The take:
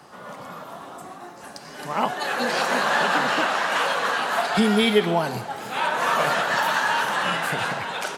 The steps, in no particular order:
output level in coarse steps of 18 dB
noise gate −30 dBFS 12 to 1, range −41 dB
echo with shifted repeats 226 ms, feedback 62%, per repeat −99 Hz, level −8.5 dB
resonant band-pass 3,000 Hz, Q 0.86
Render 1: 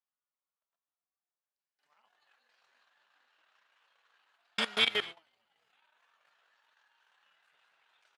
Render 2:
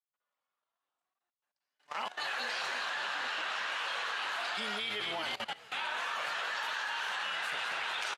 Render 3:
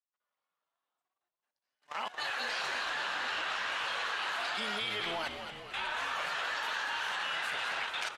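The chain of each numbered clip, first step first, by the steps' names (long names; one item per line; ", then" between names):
echo with shifted repeats, then output level in coarse steps, then noise gate, then resonant band-pass
echo with shifted repeats, then noise gate, then resonant band-pass, then output level in coarse steps
noise gate, then resonant band-pass, then output level in coarse steps, then echo with shifted repeats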